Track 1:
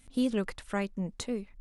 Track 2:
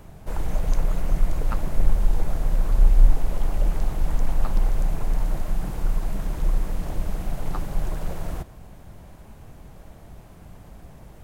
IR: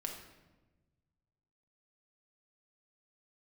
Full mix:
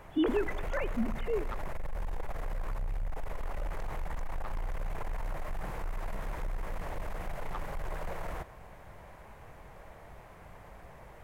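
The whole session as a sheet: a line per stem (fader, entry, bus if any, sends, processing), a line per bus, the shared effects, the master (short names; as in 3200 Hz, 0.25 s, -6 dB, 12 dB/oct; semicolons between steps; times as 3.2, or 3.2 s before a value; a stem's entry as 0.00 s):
-2.5 dB, 0.00 s, send -9.5 dB, sine-wave speech
-8.5 dB, 0.00 s, no send, graphic EQ 250/500/1000/2000 Hz -4/+7/+8/+11 dB; limiter -14.5 dBFS, peak gain reduction 11 dB; soft clip -20.5 dBFS, distortion -14 dB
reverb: on, RT60 1.2 s, pre-delay 5 ms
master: dry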